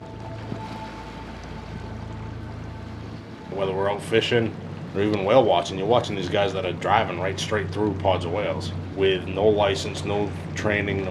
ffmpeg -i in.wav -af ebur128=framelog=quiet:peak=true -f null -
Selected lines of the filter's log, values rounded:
Integrated loudness:
  I:         -23.7 LUFS
  Threshold: -34.9 LUFS
Loudness range:
  LRA:        11.6 LU
  Threshold: -44.4 LUFS
  LRA low:   -34.0 LUFS
  LRA high:  -22.4 LUFS
True peak:
  Peak:       -2.4 dBFS